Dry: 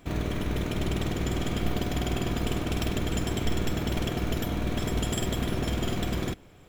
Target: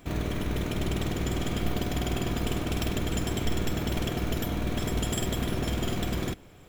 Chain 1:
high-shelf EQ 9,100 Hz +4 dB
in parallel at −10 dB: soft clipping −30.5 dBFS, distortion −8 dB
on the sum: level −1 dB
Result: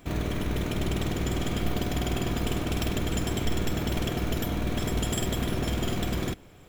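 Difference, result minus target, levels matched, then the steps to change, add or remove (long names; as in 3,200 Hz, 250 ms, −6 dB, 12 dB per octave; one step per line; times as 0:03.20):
soft clipping: distortion −5 dB
change: soft clipping −42 dBFS, distortion −4 dB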